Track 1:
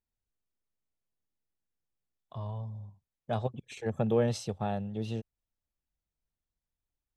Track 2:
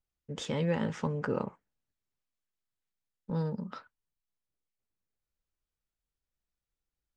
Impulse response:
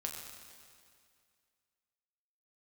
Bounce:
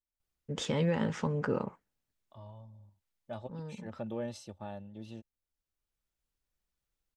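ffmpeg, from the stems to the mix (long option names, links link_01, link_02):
-filter_complex "[0:a]aecho=1:1:3.4:0.59,volume=-10.5dB,asplit=2[link_01][link_02];[1:a]alimiter=limit=-23dB:level=0:latency=1:release=165,adelay=200,volume=2.5dB[link_03];[link_02]apad=whole_len=324653[link_04];[link_03][link_04]sidechaincompress=threshold=-48dB:ratio=16:attack=16:release=1350[link_05];[link_01][link_05]amix=inputs=2:normalize=0"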